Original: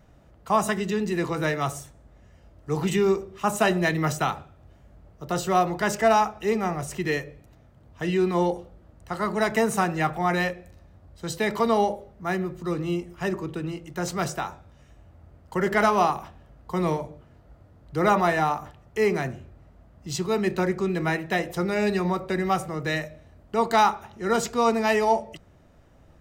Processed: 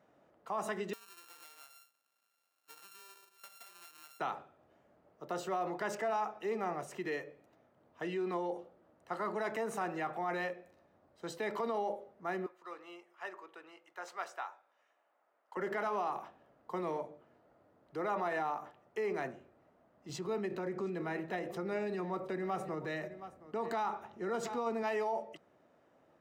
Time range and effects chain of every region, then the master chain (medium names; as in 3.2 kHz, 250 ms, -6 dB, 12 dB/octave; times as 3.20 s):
0.93–4.20 s: sorted samples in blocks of 32 samples + differentiator + compression 8:1, threshold -34 dBFS
12.46–15.57 s: high-pass 940 Hz + treble shelf 2.8 kHz -7.5 dB
20.09–24.83 s: bass shelf 220 Hz +10.5 dB + delay 719 ms -19 dB
whole clip: treble shelf 3 kHz -12 dB; peak limiter -21 dBFS; high-pass 330 Hz 12 dB/octave; trim -5 dB